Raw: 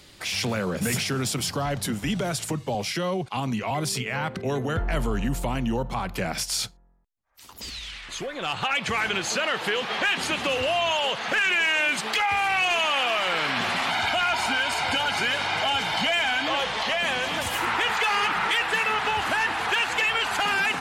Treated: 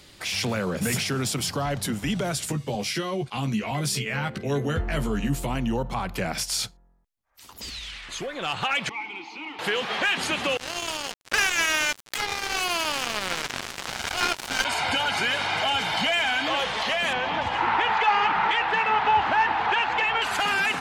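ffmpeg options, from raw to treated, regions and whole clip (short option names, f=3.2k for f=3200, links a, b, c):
-filter_complex "[0:a]asettb=1/sr,asplit=3[a][b][c];[a]atrim=end=2.354[d];[b]atrim=start=2.35:end=5.5,asetpts=PTS-STARTPTS,afade=t=in:d=0.004:c=qsin,afade=t=out:st=3.146:d=0.004:c=qsin,equalizer=f=850:w=1.1:g=-5,asplit=2[e][f];[f]adelay=14,volume=-5dB[g];[e][g]amix=inputs=2:normalize=0,atrim=end_sample=138915[h];[c]atrim=start=5.496[i];[d][h]acrossfade=d=0.004:c1=hsin:c2=qsin[j];[j][i]acrossfade=d=0.004:c1=qsin:c2=hsin,asettb=1/sr,asplit=3[k][l][m];[k]atrim=end=8.894[n];[l]atrim=start=8.89:end=9.59,asetpts=PTS-STARTPTS,afade=t=in:d=0.004:c=qsin,afade=t=out:st=0.696:d=0.004:c=qsin,highshelf=f=6.7k:t=q:w=3:g=-7.5,asplit=2[o][p];[p]highpass=f=720:p=1,volume=14dB,asoftclip=type=tanh:threshold=-13dB[q];[o][q]amix=inputs=2:normalize=0,lowpass=f=7.5k:p=1,volume=-6dB,asplit=3[r][s][t];[r]bandpass=f=300:t=q:w=8,volume=0dB[u];[s]bandpass=f=870:t=q:w=8,volume=-6dB[v];[t]bandpass=f=2.24k:t=q:w=8,volume=-9dB[w];[u][v][w]amix=inputs=3:normalize=0[x];[m]atrim=start=9.586[y];[n][x]acrossfade=d=0.004:c1=hsin:c2=qsin[z];[z][y]acrossfade=d=0.004:c1=qsin:c2=hsin,asettb=1/sr,asplit=3[aa][ab][ac];[aa]atrim=end=10.574[ad];[ab]atrim=start=10.57:end=14.65,asetpts=PTS-STARTPTS,afade=t=in:d=0.004:c=qsin,afade=t=out:st=4.076:d=0.004:c=qsin,equalizer=f=1.5k:t=o:w=0.52:g=4,acrusher=bits=2:mix=0:aa=0.5[ae];[ac]atrim=start=14.646[af];[ad][ae]acrossfade=d=0.004:c1=hsin:c2=qsin[ag];[ag][af]acrossfade=d=0.004:c1=qsin:c2=hsin,asettb=1/sr,asplit=3[ah][ai][aj];[ah]atrim=end=17.134[ak];[ai]atrim=start=17.13:end=20.22,asetpts=PTS-STARTPTS,afade=t=in:d=0.004:c=qsin,afade=t=out:st=3.086:d=0.004:c=qsin,equalizer=f=870:w=3.9:g=8.5,adynamicsmooth=sensitivity=0.5:basefreq=4.1k,lowpass=5.3k[al];[aj]atrim=start=20.216[am];[ak][al]acrossfade=d=0.004:c1=hsin:c2=qsin[an];[an][am]acrossfade=d=0.004:c1=qsin:c2=hsin"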